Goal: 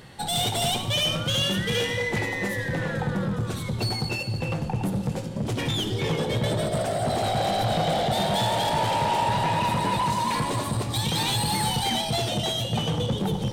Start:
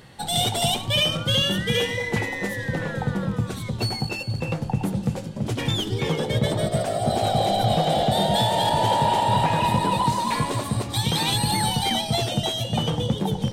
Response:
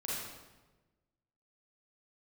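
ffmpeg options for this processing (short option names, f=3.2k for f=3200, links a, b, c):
-filter_complex "[0:a]asoftclip=type=tanh:threshold=-22dB,asplit=2[a][b];[1:a]atrim=start_sample=2205,asetrate=36603,aresample=44100[c];[b][c]afir=irnorm=-1:irlink=0,volume=-13dB[d];[a][d]amix=inputs=2:normalize=0"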